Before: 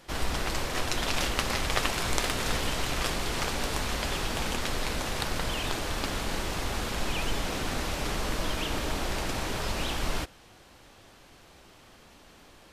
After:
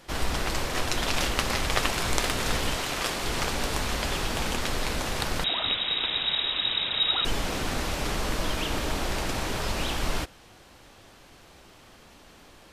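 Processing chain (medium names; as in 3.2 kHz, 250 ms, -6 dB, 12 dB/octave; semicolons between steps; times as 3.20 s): 2.76–3.24 s: bass shelf 140 Hz -11.5 dB; 5.44–7.25 s: frequency inversion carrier 3.8 kHz; trim +2 dB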